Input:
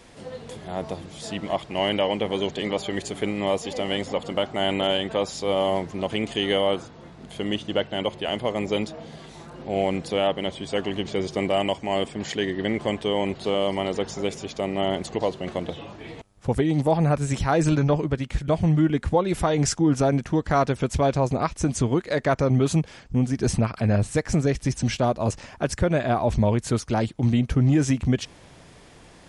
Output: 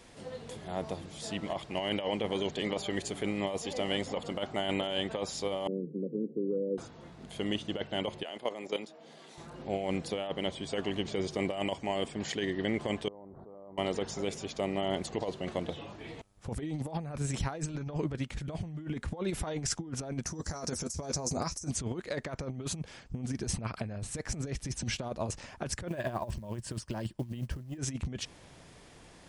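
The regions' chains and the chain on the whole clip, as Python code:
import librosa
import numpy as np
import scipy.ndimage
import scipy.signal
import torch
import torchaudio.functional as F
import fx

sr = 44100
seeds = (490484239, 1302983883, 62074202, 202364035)

y = fx.chain(x, sr, fx.cheby1_bandpass(low_hz=150.0, high_hz=510.0, order=5),
    fx.band_squash(depth_pct=40), at=(5.67, 6.78))
y = fx.chain(y, sr, fx.highpass(hz=280.0, slope=12),
    fx.level_steps(step_db=12), at=(8.23, 9.38))
y = fx.chain(y, sr, fx.cheby2_lowpass(hz=2500.0, order=4, stop_db=40),
    fx.level_steps(step_db=22), at=(13.08, 13.78))
y = fx.chain(y, sr, fx.high_shelf_res(hz=4300.0, db=10.0, q=3.0),
    fx.doubler(ms=12.0, db=-7), at=(20.25, 21.71))
y = fx.chain(y, sr, fx.ripple_eq(per_octave=1.3, db=7),
    fx.transient(attack_db=0, sustain_db=-6),
    fx.quant_float(bits=4), at=(25.88, 27.78))
y = fx.high_shelf(y, sr, hz=4400.0, db=2.5)
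y = fx.over_compress(y, sr, threshold_db=-24.0, ratio=-0.5)
y = y * librosa.db_to_amplitude(-8.5)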